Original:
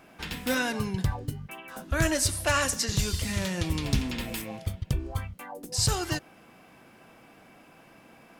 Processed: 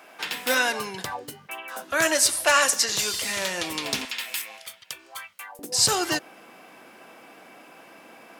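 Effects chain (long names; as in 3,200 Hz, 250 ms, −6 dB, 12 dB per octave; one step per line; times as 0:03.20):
high-pass filter 510 Hz 12 dB per octave, from 0:04.05 1,400 Hz, from 0:05.59 310 Hz
level +7 dB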